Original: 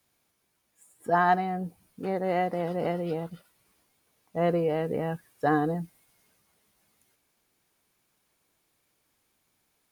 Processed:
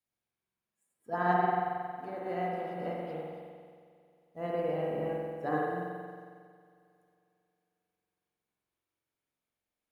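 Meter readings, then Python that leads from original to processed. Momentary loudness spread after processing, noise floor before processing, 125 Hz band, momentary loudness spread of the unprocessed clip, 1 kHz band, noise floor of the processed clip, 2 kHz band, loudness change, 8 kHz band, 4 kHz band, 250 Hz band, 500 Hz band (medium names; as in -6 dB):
19 LU, -74 dBFS, -7.5 dB, 13 LU, -4.0 dB, under -85 dBFS, -5.5 dB, -5.5 dB, no reading, -7.0 dB, -7.5 dB, -5.5 dB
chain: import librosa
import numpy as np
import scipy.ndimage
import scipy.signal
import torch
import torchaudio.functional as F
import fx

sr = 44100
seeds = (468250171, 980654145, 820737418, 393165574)

y = fx.rev_spring(x, sr, rt60_s=2.9, pass_ms=(45,), chirp_ms=65, drr_db=-4.5)
y = fx.upward_expand(y, sr, threshold_db=-40.0, expansion=1.5)
y = y * 10.0 ** (-8.5 / 20.0)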